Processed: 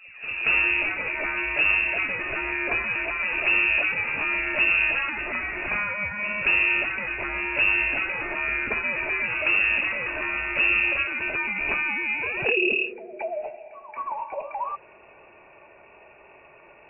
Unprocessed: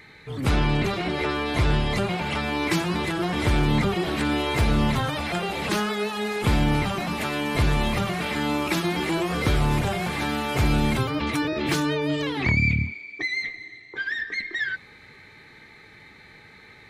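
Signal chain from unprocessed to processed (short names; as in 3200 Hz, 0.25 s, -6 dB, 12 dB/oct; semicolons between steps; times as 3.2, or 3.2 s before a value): tape start at the beginning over 0.42 s; inverted band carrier 2700 Hz; pre-echo 0.228 s -14 dB; gain -2 dB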